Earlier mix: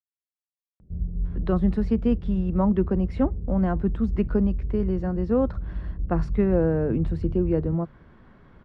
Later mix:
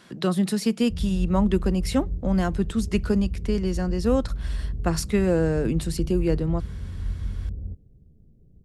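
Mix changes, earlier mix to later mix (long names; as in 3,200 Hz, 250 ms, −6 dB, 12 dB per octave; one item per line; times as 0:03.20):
speech: entry −1.25 s
master: remove low-pass filter 1,300 Hz 12 dB per octave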